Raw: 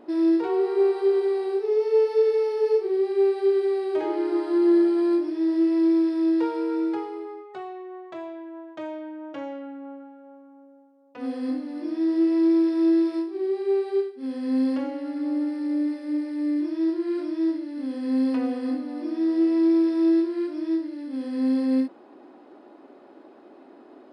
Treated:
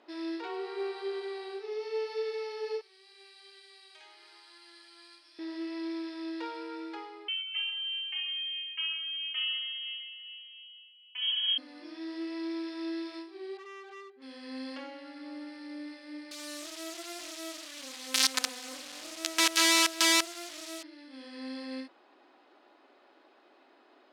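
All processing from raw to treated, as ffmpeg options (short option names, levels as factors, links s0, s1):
-filter_complex "[0:a]asettb=1/sr,asplit=3[s0][s1][s2];[s0]atrim=end=2.814[s3];[s1]atrim=start=2.81:end=5.39,asetpts=PTS-STARTPTS,afade=t=in:d=0.004:c=qsin,afade=t=out:st=2.576:d=0.004:c=qsin,highpass=360,aderivative,aecho=1:1:272:0.316,atrim=end_sample=113778[s4];[s2]atrim=start=5.386[s5];[s3][s4]acrossfade=d=0.004:c1=hsin:c2=qsin[s6];[s6][s5]acrossfade=d=0.004:c1=qsin:c2=hsin,asettb=1/sr,asplit=3[s7][s8][s9];[s7]atrim=end=7.284[s10];[s8]atrim=start=7.28:end=11.58,asetpts=PTS-STARTPTS,afade=t=in:d=0.004:c=qsin,afade=t=out:st=4.296:d=0.004:c=qsin,lowpass=f=3000:t=q:w=0.5098,lowpass=f=3000:t=q:w=0.6013,lowpass=f=3000:t=q:w=0.9,lowpass=f=3000:t=q:w=2.563,afreqshift=-3500,aecho=1:1:2.3:0.5,atrim=end_sample=189630,aecho=1:1:136:0.224,atrim=end_sample=189630[s11];[s9]atrim=start=11.576[s12];[s10][s11]acrossfade=d=0.004:c1=hsin:c2=qsin[s13];[s13][s12]acrossfade=d=0.004:c1=qsin:c2=hsin,asettb=1/sr,asplit=3[s14][s15][s16];[s14]atrim=end=13.574[s17];[s15]atrim=start=13.57:end=14.22,asetpts=PTS-STARTPTS,afade=t=in:d=0.004:c=qsin,afade=t=out:st=0.646:d=0.004:c=qsin,lowpass=1700,acompressor=threshold=0.0562:ratio=5:attack=3.2:release=140:knee=1:detection=peak,asoftclip=type=hard:threshold=0.0211[s18];[s16]atrim=start=14.216[s19];[s17][s18]acrossfade=d=0.004:c1=hsin:c2=qsin[s20];[s20][s19]acrossfade=d=0.004:c1=qsin:c2=hsin,asettb=1/sr,asplit=3[s21][s22][s23];[s21]atrim=end=16.314[s24];[s22]atrim=start=16.31:end=20.83,asetpts=PTS-STARTPTS,afade=t=in:d=0.004:c=qsin,afade=t=out:st=4.516:d=0.004:c=qsin,acrusher=bits=4:dc=4:mix=0:aa=0.000001,highshelf=f=4400:g=11[s25];[s23]atrim=start=20.826[s26];[s24][s25]acrossfade=d=0.004:c1=hsin:c2=qsin[s27];[s27][s26]acrossfade=d=0.004:c1=qsin:c2=hsin,lowpass=3800,aderivative,volume=3.16"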